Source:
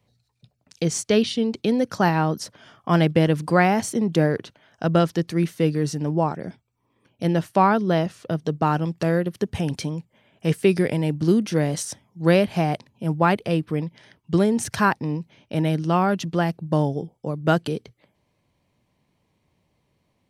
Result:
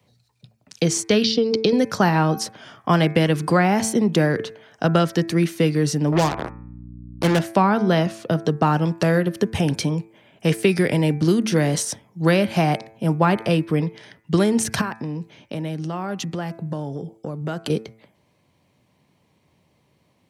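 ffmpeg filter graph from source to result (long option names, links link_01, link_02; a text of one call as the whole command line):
ffmpeg -i in.wav -filter_complex "[0:a]asettb=1/sr,asplit=3[link_01][link_02][link_03];[link_01]atrim=end=1.244[link_04];[link_02]atrim=start=1.24:end=1.73,asetpts=PTS-STARTPTS,afade=type=in:duration=0.004:curve=qsin,afade=type=out:start_time=0.486:duration=0.004:curve=qsin,lowpass=frequency=5000:width_type=q:width=4.9,equalizer=frequency=450:width=6.9:gain=13.5,acompressor=threshold=-16dB:ratio=4:attack=3.2:release=140:knee=1:detection=peak[link_05];[link_03]atrim=start=1.726[link_06];[link_04][link_05]acrossfade=duration=0.004:curve1=hsin:curve2=qsin[link_07];[link_07][link_06]acrossfade=duration=0.004:curve1=qsin:curve2=hsin,asettb=1/sr,asplit=3[link_08][link_09][link_10];[link_08]atrim=end=6.124[link_11];[link_09]atrim=start=6.12:end=7.39,asetpts=PTS-STARTPTS,afade=type=in:duration=0.004:curve=qsin,afade=type=out:start_time=1.266:duration=0.004:curve=qsin,acrusher=bits=3:mix=0:aa=0.5,aeval=exprs='val(0)+0.01*(sin(2*PI*60*n/s)+sin(2*PI*2*60*n/s)/2+sin(2*PI*3*60*n/s)/3+sin(2*PI*4*60*n/s)/4+sin(2*PI*5*60*n/s)/5)':channel_layout=same[link_12];[link_10]atrim=start=7.386[link_13];[link_11][link_12]acrossfade=duration=0.004:curve1=hsin:curve2=qsin[link_14];[link_14][link_13]acrossfade=duration=0.004:curve1=qsin:curve2=hsin,asettb=1/sr,asplit=3[link_15][link_16][link_17];[link_15]atrim=end=14.814[link_18];[link_16]atrim=start=14.81:end=17.7,asetpts=PTS-STARTPTS,afade=type=in:duration=0.004:curve=qsin,afade=type=out:start_time=2.886:duration=0.004:curve=qsin,equalizer=frequency=7200:width=4.6:gain=4,acompressor=threshold=-31dB:ratio=5:attack=3.2:release=140:knee=1:detection=peak[link_19];[link_17]atrim=start=17.696[link_20];[link_18][link_19]acrossfade=duration=0.004:curve1=hsin:curve2=qsin[link_21];[link_21][link_20]acrossfade=duration=0.004:curve1=qsin:curve2=hsin,highpass=85,bandreject=frequency=111.1:width_type=h:width=4,bandreject=frequency=222.2:width_type=h:width=4,bandreject=frequency=333.3:width_type=h:width=4,bandreject=frequency=444.4:width_type=h:width=4,bandreject=frequency=555.5:width_type=h:width=4,bandreject=frequency=666.6:width_type=h:width=4,bandreject=frequency=777.7:width_type=h:width=4,bandreject=frequency=888.8:width_type=h:width=4,bandreject=frequency=999.9:width_type=h:width=4,bandreject=frequency=1111:width_type=h:width=4,bandreject=frequency=1222.1:width_type=h:width=4,bandreject=frequency=1333.2:width_type=h:width=4,bandreject=frequency=1444.3:width_type=h:width=4,bandreject=frequency=1555.4:width_type=h:width=4,bandreject=frequency=1666.5:width_type=h:width=4,bandreject=frequency=1777.6:width_type=h:width=4,bandreject=frequency=1888.7:width_type=h:width=4,bandreject=frequency=1999.8:width_type=h:width=4,bandreject=frequency=2110.9:width_type=h:width=4,bandreject=frequency=2222:width_type=h:width=4,bandreject=frequency=2333.1:width_type=h:width=4,bandreject=frequency=2444.2:width_type=h:width=4,bandreject=frequency=2555.3:width_type=h:width=4,acrossover=split=280|990[link_22][link_23][link_24];[link_22]acompressor=threshold=-26dB:ratio=4[link_25];[link_23]acompressor=threshold=-27dB:ratio=4[link_26];[link_24]acompressor=threshold=-28dB:ratio=4[link_27];[link_25][link_26][link_27]amix=inputs=3:normalize=0,volume=6.5dB" out.wav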